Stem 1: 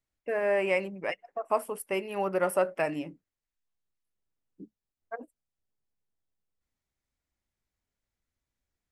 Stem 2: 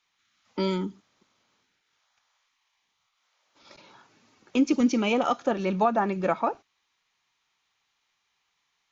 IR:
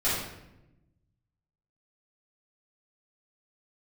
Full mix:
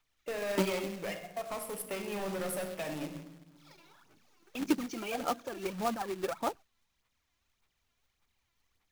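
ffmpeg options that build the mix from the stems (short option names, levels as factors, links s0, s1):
-filter_complex "[0:a]acrossover=split=260|3000[s0][s1][s2];[s1]acompressor=threshold=0.0141:ratio=2.5[s3];[s0][s3][s2]amix=inputs=3:normalize=0,aeval=exprs='(tanh(63.1*val(0)+0.05)-tanh(0.05))/63.1':c=same,volume=1.12,asplit=2[s4][s5];[s5]volume=0.178[s6];[1:a]alimiter=limit=0.119:level=0:latency=1:release=161,aphaser=in_gain=1:out_gain=1:delay=3:decay=0.73:speed=1.7:type=sinusoidal,volume=0.282[s7];[2:a]atrim=start_sample=2205[s8];[s6][s8]afir=irnorm=-1:irlink=0[s9];[s4][s7][s9]amix=inputs=3:normalize=0,acrusher=bits=2:mode=log:mix=0:aa=0.000001"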